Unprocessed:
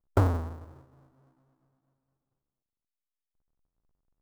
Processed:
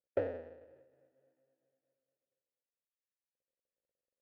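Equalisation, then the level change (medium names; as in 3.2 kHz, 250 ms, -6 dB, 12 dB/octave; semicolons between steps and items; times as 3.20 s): vowel filter e; Bessel low-pass 3.4 kHz; +4.5 dB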